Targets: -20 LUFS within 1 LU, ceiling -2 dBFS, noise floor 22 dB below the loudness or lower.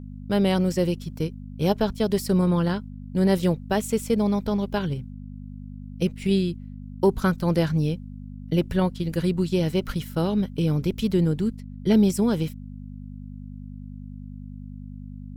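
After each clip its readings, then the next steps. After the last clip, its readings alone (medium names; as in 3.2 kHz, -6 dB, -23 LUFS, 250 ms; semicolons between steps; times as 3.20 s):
hum 50 Hz; highest harmonic 250 Hz; hum level -36 dBFS; loudness -24.5 LUFS; peak level -7.5 dBFS; loudness target -20.0 LUFS
-> de-hum 50 Hz, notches 5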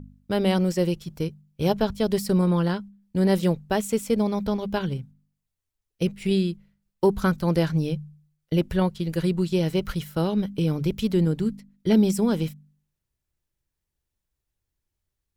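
hum not found; loudness -25.0 LUFS; peak level -8.0 dBFS; loudness target -20.0 LUFS
-> trim +5 dB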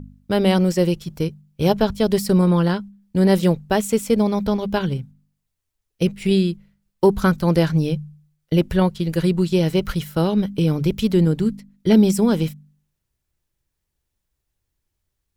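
loudness -20.0 LUFS; peak level -3.0 dBFS; noise floor -78 dBFS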